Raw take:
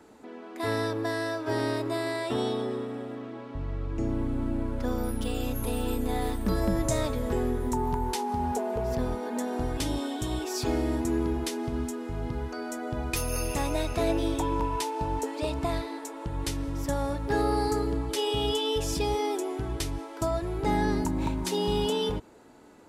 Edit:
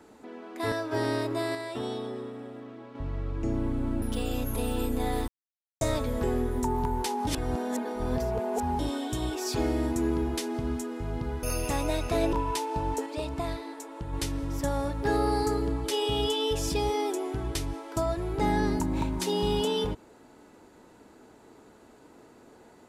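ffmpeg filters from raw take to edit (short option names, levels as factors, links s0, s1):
-filter_complex "[0:a]asplit=13[s0][s1][s2][s3][s4][s5][s6][s7][s8][s9][s10][s11][s12];[s0]atrim=end=0.722[s13];[s1]atrim=start=1.268:end=2.102[s14];[s2]atrim=start=2.098:end=3.502,asetpts=PTS-STARTPTS,volume=0.562[s15];[s3]atrim=start=3.498:end=4.572[s16];[s4]atrim=start=5.108:end=6.37,asetpts=PTS-STARTPTS,afade=t=out:st=1.258:d=0.004:c=hsin[s17];[s5]atrim=start=6.37:end=6.9,asetpts=PTS-STARTPTS,volume=0[s18];[s6]atrim=start=6.9:end=8.362,asetpts=PTS-STARTPTS,afade=t=in:d=0.004:c=hsin[s19];[s7]atrim=start=8.358:end=9.882,asetpts=PTS-STARTPTS,areverse[s20];[s8]atrim=start=9.878:end=12.522[s21];[s9]atrim=start=13.288:end=14.192[s22];[s10]atrim=start=14.578:end=15.312[s23];[s11]atrim=start=15.308:end=16.382,asetpts=PTS-STARTPTS,volume=0.708[s24];[s12]atrim=start=16.378[s25];[s13][s14]acrossfade=d=0.004:c1=hsin:c2=hsin[s26];[s26][s15]acrossfade=d=0.004:c1=hsin:c2=hsin[s27];[s27][s16]acrossfade=d=0.004:c1=hsin:c2=hsin[s28];[s17][s18][s19]concat=n=3:v=0:a=1[s29];[s28][s29]acrossfade=d=0.004:c1=hsin:c2=hsin[s30];[s30][s20]acrossfade=d=0.004:c1=hsin:c2=hsin[s31];[s31][s21]acrossfade=d=0.004:c1=hsin:c2=hsin[s32];[s32][s22]acrossfade=d=0.004:c1=hsin:c2=hsin[s33];[s33][s23]acrossfade=d=0.004:c1=hsin:c2=hsin[s34];[s34][s24]acrossfade=d=0.004:c1=hsin:c2=hsin[s35];[s35][s25]acrossfade=d=0.004:c1=hsin:c2=hsin"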